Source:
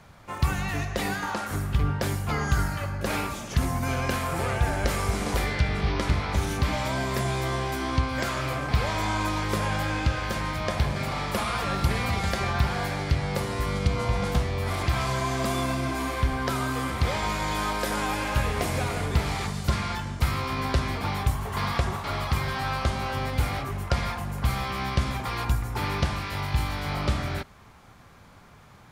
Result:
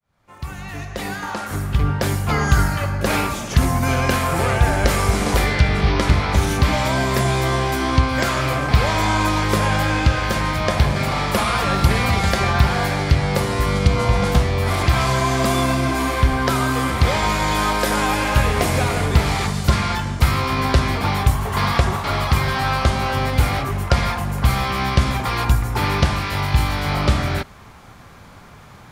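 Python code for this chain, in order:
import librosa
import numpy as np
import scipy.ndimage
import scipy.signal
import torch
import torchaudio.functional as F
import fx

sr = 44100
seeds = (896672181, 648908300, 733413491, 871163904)

y = fx.fade_in_head(x, sr, length_s=2.48)
y = y * 10.0 ** (8.5 / 20.0)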